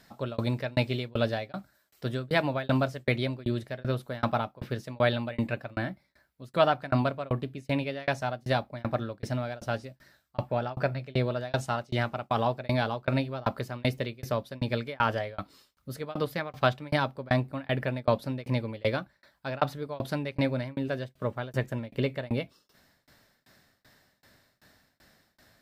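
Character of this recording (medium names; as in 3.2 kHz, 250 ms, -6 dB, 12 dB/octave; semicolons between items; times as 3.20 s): tremolo saw down 2.6 Hz, depth 100%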